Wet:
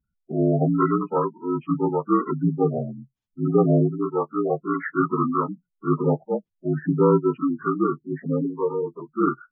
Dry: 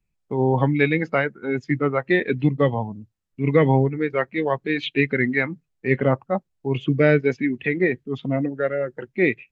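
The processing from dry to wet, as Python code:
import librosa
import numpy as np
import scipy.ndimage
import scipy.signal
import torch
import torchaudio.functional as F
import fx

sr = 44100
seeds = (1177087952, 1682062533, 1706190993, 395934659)

y = fx.partial_stretch(x, sr, pct=76)
y = fx.spec_gate(y, sr, threshold_db=-20, keep='strong')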